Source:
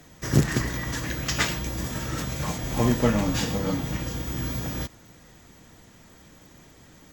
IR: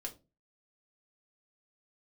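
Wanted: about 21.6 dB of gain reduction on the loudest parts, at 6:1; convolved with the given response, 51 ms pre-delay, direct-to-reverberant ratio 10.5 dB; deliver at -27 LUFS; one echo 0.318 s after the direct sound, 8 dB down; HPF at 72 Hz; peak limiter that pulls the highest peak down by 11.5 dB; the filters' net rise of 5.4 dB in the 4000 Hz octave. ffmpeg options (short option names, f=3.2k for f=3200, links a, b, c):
-filter_complex "[0:a]highpass=72,equalizer=f=4k:t=o:g=7,acompressor=threshold=-38dB:ratio=6,alimiter=level_in=10.5dB:limit=-24dB:level=0:latency=1,volume=-10.5dB,aecho=1:1:318:0.398,asplit=2[a][b];[1:a]atrim=start_sample=2205,adelay=51[c];[b][c]afir=irnorm=-1:irlink=0,volume=-8.5dB[d];[a][d]amix=inputs=2:normalize=0,volume=16.5dB"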